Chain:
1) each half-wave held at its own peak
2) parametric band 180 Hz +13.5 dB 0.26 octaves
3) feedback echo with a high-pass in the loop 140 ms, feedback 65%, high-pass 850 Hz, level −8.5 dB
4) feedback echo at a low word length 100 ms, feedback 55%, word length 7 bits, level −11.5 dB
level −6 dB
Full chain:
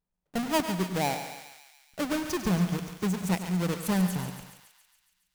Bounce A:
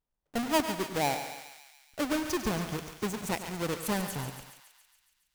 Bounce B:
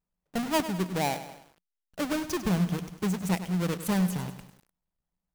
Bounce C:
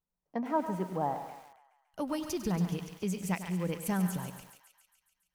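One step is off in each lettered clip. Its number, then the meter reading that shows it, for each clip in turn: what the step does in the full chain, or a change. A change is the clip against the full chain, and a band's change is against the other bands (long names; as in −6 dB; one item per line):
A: 2, 125 Hz band −8.0 dB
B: 3, change in momentary loudness spread −4 LU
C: 1, distortion level −5 dB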